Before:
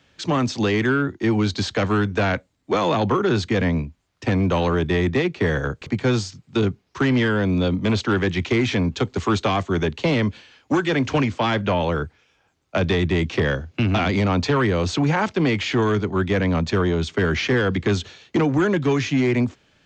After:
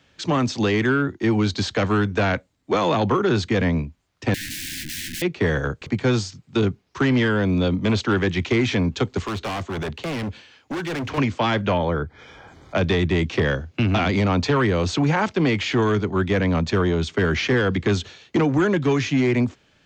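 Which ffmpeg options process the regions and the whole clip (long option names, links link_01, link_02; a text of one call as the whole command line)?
ffmpeg -i in.wav -filter_complex "[0:a]asettb=1/sr,asplit=3[link_01][link_02][link_03];[link_01]atrim=end=4.344[link_04];[link_02]atrim=start=4.34:end=5.22,asetpts=PTS-STARTPTS,afade=type=in:duration=0.004:curve=qsin,afade=type=out:start_time=0.876:duration=0.004:curve=qsin,aeval=exprs='(mod(18.8*val(0)+1,2)-1)/18.8':channel_layout=same,asuperstop=centerf=730:order=20:qfactor=0.58[link_05];[link_03]atrim=start=5.216[link_06];[link_04][link_05]acrossfade=duration=0.004:curve1=hsin:curve2=qsin[link_07];[link_07][link_06]acrossfade=duration=0.004:curve1=qsin:curve2=hsin,asettb=1/sr,asplit=3[link_08][link_09][link_10];[link_08]atrim=end=9.224[link_11];[link_09]atrim=start=9.22:end=11.18,asetpts=PTS-STARTPTS,afade=type=in:duration=0.004:curve=qsin,afade=type=out:start_time=1.956:duration=0.004:curve=qsin,acrossover=split=3800[link_12][link_13];[link_13]acompressor=threshold=-45dB:ratio=4:attack=1:release=60[link_14];[link_12][link_14]amix=inputs=2:normalize=0,highpass=frequency=59:width=0.5412,highpass=frequency=59:width=1.3066,asoftclip=type=hard:threshold=-25dB[link_15];[link_10]atrim=start=11.176[link_16];[link_11][link_15]acrossfade=duration=0.004:curve1=hsin:curve2=qsin[link_17];[link_17][link_16]acrossfade=duration=0.004:curve1=qsin:curve2=hsin,asettb=1/sr,asplit=3[link_18][link_19][link_20];[link_18]atrim=end=11.774[link_21];[link_19]atrim=start=11.77:end=12.76,asetpts=PTS-STARTPTS,afade=type=in:duration=0.004:curve=qsin,afade=type=out:start_time=0.986:duration=0.004:curve=qsin,aemphasis=mode=reproduction:type=75kf,acompressor=mode=upward:threshold=-25dB:ratio=2.5:attack=3.2:release=140:knee=2.83:detection=peak,asuperstop=centerf=2700:order=12:qfactor=6.2[link_22];[link_20]atrim=start=12.756[link_23];[link_21][link_22]acrossfade=duration=0.004:curve1=hsin:curve2=qsin[link_24];[link_24][link_23]acrossfade=duration=0.004:curve1=qsin:curve2=hsin" out.wav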